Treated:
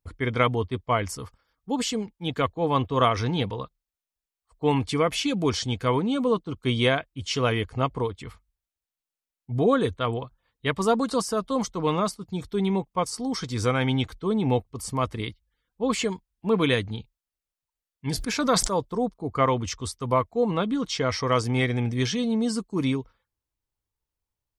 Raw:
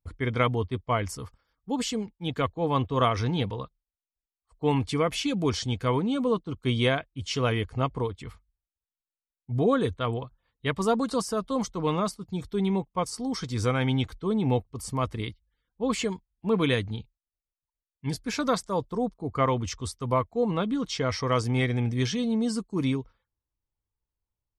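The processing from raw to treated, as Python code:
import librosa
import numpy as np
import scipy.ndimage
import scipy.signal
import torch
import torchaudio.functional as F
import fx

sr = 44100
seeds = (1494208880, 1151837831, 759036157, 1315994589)

y = fx.low_shelf(x, sr, hz=190.0, db=-4.0)
y = fx.sustainer(y, sr, db_per_s=49.0, at=(18.06, 18.69), fade=0.02)
y = y * librosa.db_to_amplitude(3.0)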